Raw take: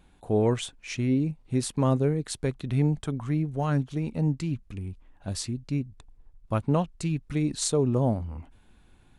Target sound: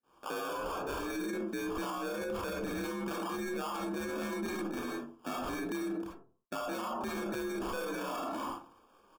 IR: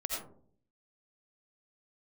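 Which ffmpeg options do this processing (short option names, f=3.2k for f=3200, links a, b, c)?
-filter_complex "[0:a]highshelf=f=2k:g=11.5,asplit=2[a][b];[b]highpass=f=720:p=1,volume=25dB,asoftclip=type=tanh:threshold=-1dB[c];[a][c]amix=inputs=2:normalize=0,lowpass=f=1.2k:p=1,volume=-6dB,highpass=f=160:t=q:w=0.5412,highpass=f=160:t=q:w=1.307,lowpass=f=3.5k:t=q:w=0.5176,lowpass=f=3.5k:t=q:w=0.7071,lowpass=f=3.5k:t=q:w=1.932,afreqshift=53,acrossover=split=560|2200[d][e][f];[e]adelay=30[g];[f]adelay=60[h];[d][g][h]amix=inputs=3:normalize=0,acrusher=samples=22:mix=1:aa=0.000001,equalizer=f=1.2k:w=1.7:g=6.5,agate=range=-33dB:threshold=-40dB:ratio=3:detection=peak[i];[1:a]atrim=start_sample=2205,asetrate=74970,aresample=44100[j];[i][j]afir=irnorm=-1:irlink=0,alimiter=level_in=5.5dB:limit=-24dB:level=0:latency=1:release=16,volume=-5.5dB"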